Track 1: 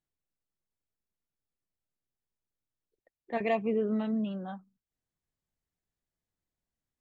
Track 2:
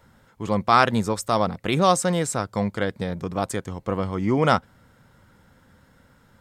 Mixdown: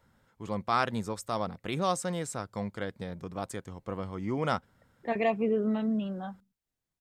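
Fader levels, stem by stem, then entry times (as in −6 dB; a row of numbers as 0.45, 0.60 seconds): +1.5, −10.5 decibels; 1.75, 0.00 seconds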